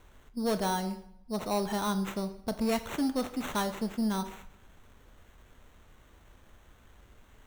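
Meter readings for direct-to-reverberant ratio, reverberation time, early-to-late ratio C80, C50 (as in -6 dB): 10.0 dB, 0.70 s, 15.5 dB, 13.0 dB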